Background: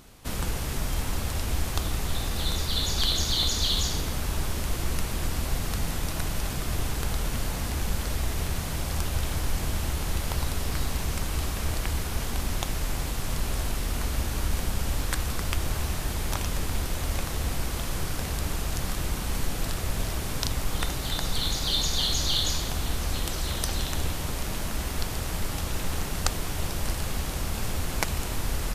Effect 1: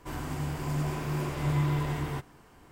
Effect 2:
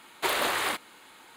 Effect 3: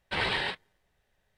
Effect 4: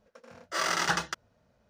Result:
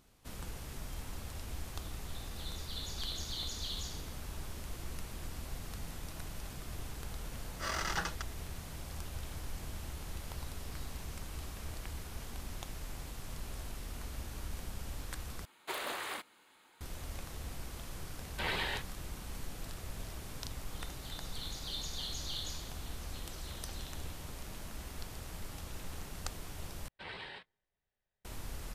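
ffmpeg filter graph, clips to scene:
-filter_complex "[3:a]asplit=2[a][b];[0:a]volume=-14.5dB[c];[b]highshelf=f=11k:g=-7.5[d];[c]asplit=3[e][f][g];[e]atrim=end=15.454[h];[2:a]atrim=end=1.36,asetpts=PTS-STARTPTS,volume=-12dB[i];[f]atrim=start=16.806:end=26.884[j];[d]atrim=end=1.37,asetpts=PTS-STARTPTS,volume=-16.5dB[k];[g]atrim=start=28.246[l];[4:a]atrim=end=1.69,asetpts=PTS-STARTPTS,volume=-8.5dB,afade=t=in:d=0.004:c=hsin,afade=t=out:st=1.686:d=0.004:c=hsin,adelay=7080[m];[a]atrim=end=1.37,asetpts=PTS-STARTPTS,volume=-6.5dB,afade=t=in:d=0.004:c=hsin,afade=t=out:st=1.366:d=0.004:c=hsin,adelay=18270[n];[h][i]acrossfade=d=0.004:c1=hsin:c2=hsin[o];[o][j]acrossfade=d=0.004:c1=hsin:c2=hsin[p];[p][k]acrossfade=d=0.004:c1=hsin:c2=hsin[q];[q][l]acrossfade=d=0.004:c1=hsin:c2=hsin[r];[r][m][n]amix=inputs=3:normalize=0"

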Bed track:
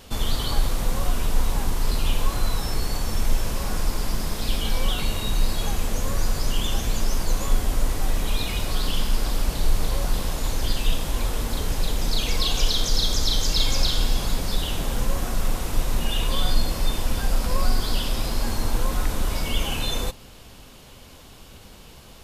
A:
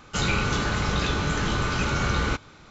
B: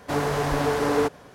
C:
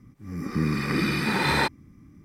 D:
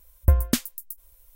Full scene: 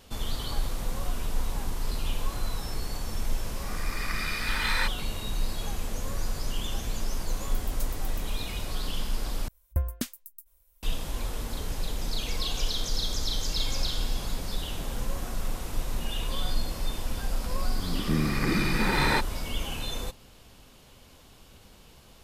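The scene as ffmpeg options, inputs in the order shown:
-filter_complex "[3:a]asplit=2[a][b];[4:a]asplit=2[c][d];[0:a]volume=-7.5dB[e];[a]highpass=f=1.1k:w=0.5412,highpass=f=1.1k:w=1.3066[f];[c]aderivative[g];[e]asplit=2[h][i];[h]atrim=end=9.484[j];[d]atrim=end=1.35,asetpts=PTS-STARTPTS,volume=-9.5dB[k];[i]atrim=start=10.826[l];[f]atrim=end=2.24,asetpts=PTS-STARTPTS,volume=-3dB,afade=t=in:d=0.004:c=hsin,afade=t=out:st=2.236:d=0.004:c=hsin,adelay=3200[m];[g]atrim=end=1.35,asetpts=PTS-STARTPTS,volume=-14.5dB,afade=t=in:d=0.004:c=hsin,afade=t=out:st=1.346:d=0.004:c=hsin,adelay=7270[n];[b]atrim=end=2.24,asetpts=PTS-STARTPTS,volume=-2dB,afade=t=in:d=0.004:c=hsin,afade=t=out:st=2.236:d=0.004:c=hsin,adelay=17530[o];[j][k]acrossfade=d=0.004:c1=hsin:c2=hsin[p];[p][l]acrossfade=d=0.004:c1=hsin:c2=hsin[q];[q][m][n][o]amix=inputs=4:normalize=0"

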